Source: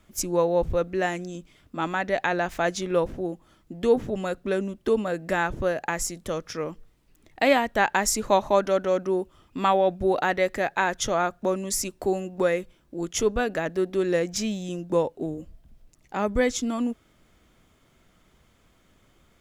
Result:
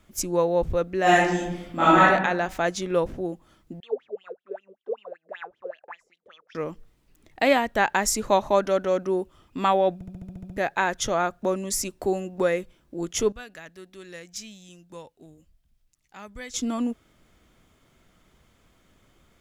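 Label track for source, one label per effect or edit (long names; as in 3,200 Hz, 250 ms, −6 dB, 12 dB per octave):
1.020000	2.060000	thrown reverb, RT60 0.87 s, DRR −10.5 dB
3.800000	6.550000	LFO wah 5.2 Hz 410–3,400 Hz, Q 13
9.940000	9.940000	stutter in place 0.07 s, 9 plays
13.320000	16.540000	guitar amp tone stack bass-middle-treble 5-5-5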